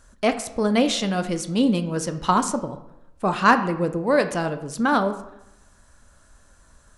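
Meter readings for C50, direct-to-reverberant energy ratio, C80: 12.0 dB, 8.5 dB, 14.5 dB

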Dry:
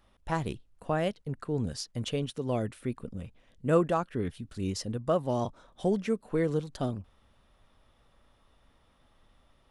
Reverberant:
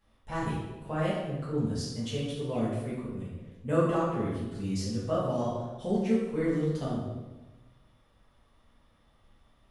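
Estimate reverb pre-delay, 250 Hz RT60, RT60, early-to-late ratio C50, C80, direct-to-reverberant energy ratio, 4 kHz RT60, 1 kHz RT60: 3 ms, 1.5 s, 1.2 s, 0.5 dB, 3.0 dB, -9.5 dB, 0.85 s, 1.1 s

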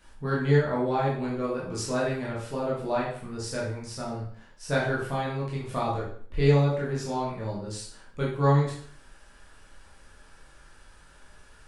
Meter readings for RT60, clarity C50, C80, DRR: 0.50 s, 3.0 dB, 8.0 dB, -6.5 dB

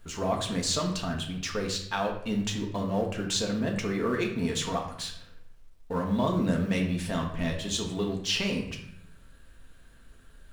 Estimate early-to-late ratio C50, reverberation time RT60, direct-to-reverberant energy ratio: 7.0 dB, 0.70 s, 0.5 dB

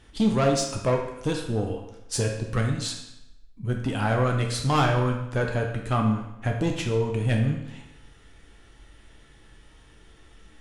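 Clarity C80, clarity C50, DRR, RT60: 8.0 dB, 5.0 dB, 1.5 dB, 0.90 s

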